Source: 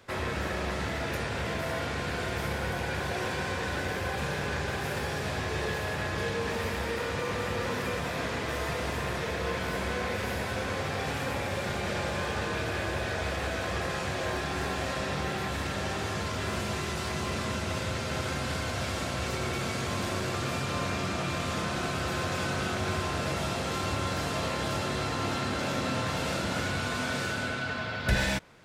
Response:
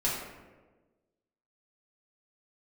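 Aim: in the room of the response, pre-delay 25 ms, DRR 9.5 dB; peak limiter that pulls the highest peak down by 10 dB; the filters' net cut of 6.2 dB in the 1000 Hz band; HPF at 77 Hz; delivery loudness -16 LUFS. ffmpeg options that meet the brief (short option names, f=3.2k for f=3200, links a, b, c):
-filter_complex "[0:a]highpass=77,equalizer=f=1k:t=o:g=-8.5,alimiter=level_in=0.5dB:limit=-24dB:level=0:latency=1,volume=-0.5dB,asplit=2[a][b];[1:a]atrim=start_sample=2205,adelay=25[c];[b][c]afir=irnorm=-1:irlink=0,volume=-18dB[d];[a][d]amix=inputs=2:normalize=0,volume=17.5dB"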